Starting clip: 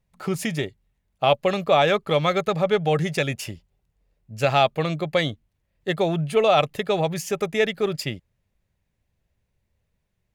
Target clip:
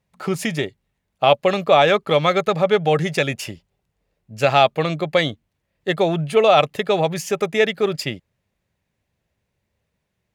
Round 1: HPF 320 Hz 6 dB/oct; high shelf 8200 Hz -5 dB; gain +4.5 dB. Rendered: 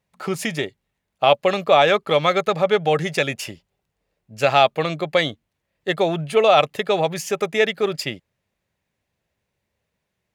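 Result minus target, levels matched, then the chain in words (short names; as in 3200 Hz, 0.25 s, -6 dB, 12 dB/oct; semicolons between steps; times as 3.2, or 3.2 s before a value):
125 Hz band -3.0 dB
HPF 160 Hz 6 dB/oct; high shelf 8200 Hz -5 dB; gain +4.5 dB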